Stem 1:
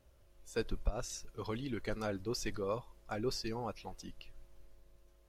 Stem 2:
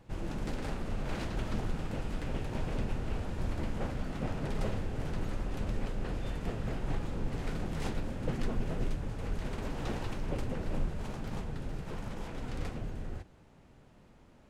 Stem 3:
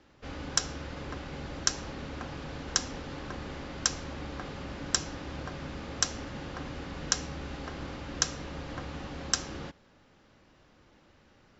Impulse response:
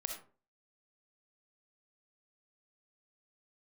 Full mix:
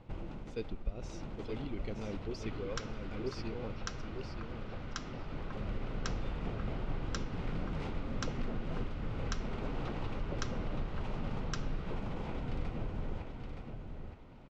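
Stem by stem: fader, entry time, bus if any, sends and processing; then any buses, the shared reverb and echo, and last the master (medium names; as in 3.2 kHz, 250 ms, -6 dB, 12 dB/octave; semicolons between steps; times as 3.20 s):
-2.5 dB, 0.00 s, no send, echo send -6.5 dB, high-order bell 1 kHz -10.5 dB
+2.5 dB, 0.00 s, no send, echo send -6 dB, compression, threshold -36 dBFS, peak gain reduction 10.5 dB; auto duck -12 dB, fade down 0.70 s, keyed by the first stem
-1.5 dB, 2.20 s, no send, no echo send, ladder high-pass 980 Hz, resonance 35%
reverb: none
echo: feedback delay 920 ms, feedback 18%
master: low-pass 3.5 kHz 12 dB/octave; peaking EQ 1.7 kHz -7.5 dB 0.21 oct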